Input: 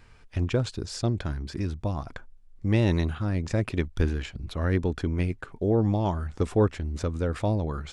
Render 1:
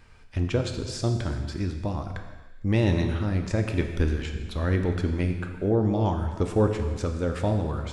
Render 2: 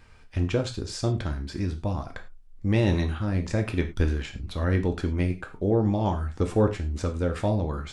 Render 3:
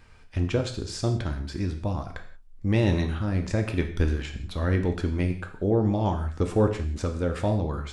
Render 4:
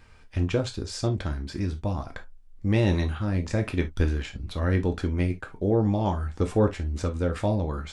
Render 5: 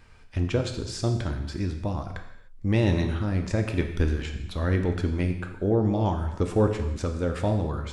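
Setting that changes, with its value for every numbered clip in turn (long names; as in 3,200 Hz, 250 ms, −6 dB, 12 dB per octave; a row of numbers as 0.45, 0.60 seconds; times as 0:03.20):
reverb whose tail is shaped and stops, gate: 490, 130, 210, 90, 330 milliseconds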